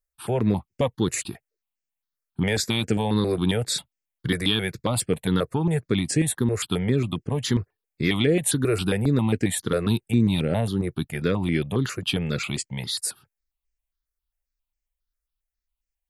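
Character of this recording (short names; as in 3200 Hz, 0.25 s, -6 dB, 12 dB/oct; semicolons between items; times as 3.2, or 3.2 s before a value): notches that jump at a steady rate 7.4 Hz 880–3700 Hz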